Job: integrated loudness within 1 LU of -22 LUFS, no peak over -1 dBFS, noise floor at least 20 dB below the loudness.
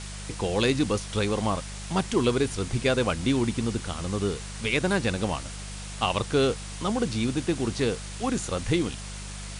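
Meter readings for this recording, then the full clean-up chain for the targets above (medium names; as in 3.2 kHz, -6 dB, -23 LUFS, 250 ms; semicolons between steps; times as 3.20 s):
hum 50 Hz; highest harmonic 200 Hz; hum level -36 dBFS; noise floor -38 dBFS; noise floor target -47 dBFS; loudness -27.0 LUFS; peak level -9.5 dBFS; loudness target -22.0 LUFS
-> de-hum 50 Hz, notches 4; noise print and reduce 9 dB; trim +5 dB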